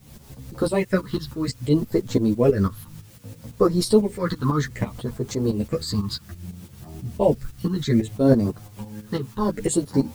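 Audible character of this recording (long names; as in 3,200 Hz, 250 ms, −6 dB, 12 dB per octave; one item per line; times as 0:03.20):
phaser sweep stages 6, 0.62 Hz, lowest notch 590–2,900 Hz
a quantiser's noise floor 10 bits, dither triangular
tremolo saw up 6 Hz, depth 75%
a shimmering, thickened sound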